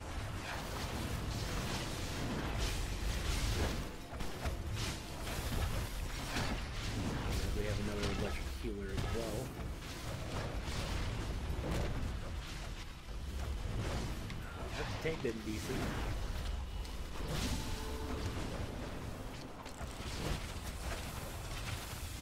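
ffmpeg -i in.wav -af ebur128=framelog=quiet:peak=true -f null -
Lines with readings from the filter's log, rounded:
Integrated loudness:
  I:         -40.6 LUFS
  Threshold: -50.6 LUFS
Loudness range:
  LRA:         3.6 LU
  Threshold: -60.5 LUFS
  LRA low:   -42.6 LUFS
  LRA high:  -39.0 LUFS
True peak:
  Peak:      -23.5 dBFS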